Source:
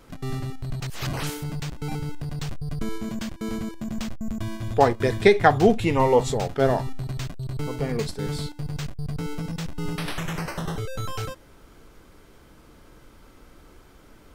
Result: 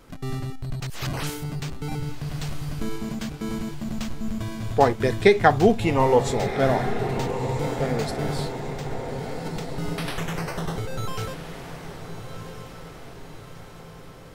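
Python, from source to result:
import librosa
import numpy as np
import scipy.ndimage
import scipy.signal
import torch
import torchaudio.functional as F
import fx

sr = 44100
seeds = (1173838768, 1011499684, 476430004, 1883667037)

p1 = fx.over_compress(x, sr, threshold_db=-34.0, ratio=-0.5, at=(8.53, 9.72), fade=0.02)
y = p1 + fx.echo_diffused(p1, sr, ms=1369, feedback_pct=55, wet_db=-9, dry=0)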